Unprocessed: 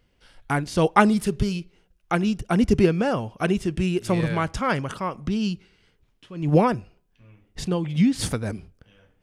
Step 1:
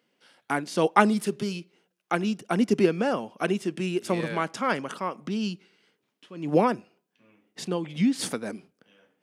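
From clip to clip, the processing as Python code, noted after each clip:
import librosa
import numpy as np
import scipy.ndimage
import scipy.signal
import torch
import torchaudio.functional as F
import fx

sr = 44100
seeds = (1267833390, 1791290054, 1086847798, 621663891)

y = scipy.signal.sosfilt(scipy.signal.butter(4, 200.0, 'highpass', fs=sr, output='sos'), x)
y = y * 10.0 ** (-2.0 / 20.0)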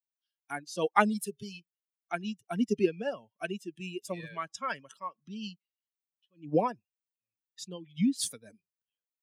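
y = fx.bin_expand(x, sr, power=2.0)
y = fx.high_shelf(y, sr, hz=5900.0, db=7.5)
y = y * 10.0 ** (-2.5 / 20.0)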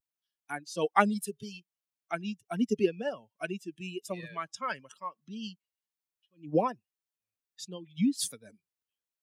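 y = fx.vibrato(x, sr, rate_hz=0.78, depth_cents=46.0)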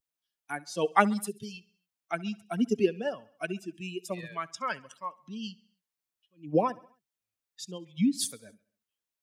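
y = fx.echo_feedback(x, sr, ms=67, feedback_pct=55, wet_db=-23.0)
y = y * 10.0 ** (1.5 / 20.0)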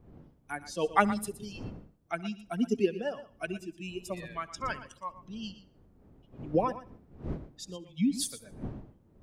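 y = fx.dmg_wind(x, sr, seeds[0], corner_hz=230.0, level_db=-46.0)
y = y + 10.0 ** (-14.0 / 20.0) * np.pad(y, (int(118 * sr / 1000.0), 0))[:len(y)]
y = y * 10.0 ** (-2.0 / 20.0)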